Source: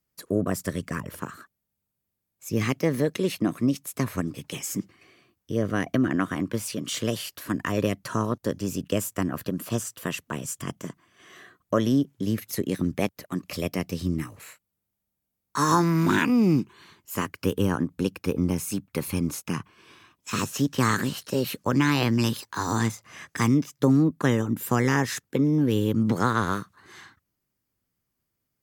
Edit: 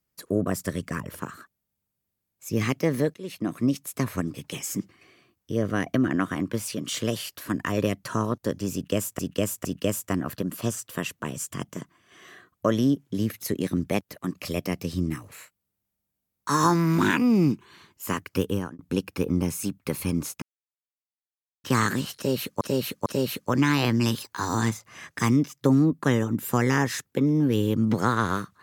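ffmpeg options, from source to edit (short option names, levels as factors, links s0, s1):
-filter_complex "[0:a]asplit=9[s0][s1][s2][s3][s4][s5][s6][s7][s8];[s0]atrim=end=3.14,asetpts=PTS-STARTPTS,afade=t=out:st=3.136:d=0.004:c=hsin:silence=0.0944061[s9];[s1]atrim=start=3.14:end=9.192,asetpts=PTS-STARTPTS,afade=t=in:d=0.52:silence=0.0944061[s10];[s2]atrim=start=8.728:end=9.192[s11];[s3]atrim=start=8.728:end=17.87,asetpts=PTS-STARTPTS,afade=t=out:st=8.792:d=0.35[s12];[s4]atrim=start=17.87:end=19.5,asetpts=PTS-STARTPTS,afade=t=in:d=0.004:c=hsin,afade=t=out:st=1.626:d=0.004:c=hsin[s13];[s5]atrim=start=19.5:end=20.72,asetpts=PTS-STARTPTS,volume=0[s14];[s6]atrim=start=20.72:end=21.692,asetpts=PTS-STARTPTS,afade=t=in:d=0.004:c=hsin[s15];[s7]atrim=start=21.238:end=21.692[s16];[s8]atrim=start=21.238[s17];[s9][s10]concat=n=2:v=0:a=1[s18];[s18][s11]acrossfade=d=0.004:c1=hsin:c2=hsin[s19];[s12][s13][s14][s15]concat=n=4:v=0:a=1[s20];[s19][s20]acrossfade=d=0.004:c1=hsin:c2=hsin[s21];[s21][s16]acrossfade=d=0.004:c1=hsin:c2=hsin[s22];[s22][s17]acrossfade=d=0.004:c1=hsin:c2=hsin"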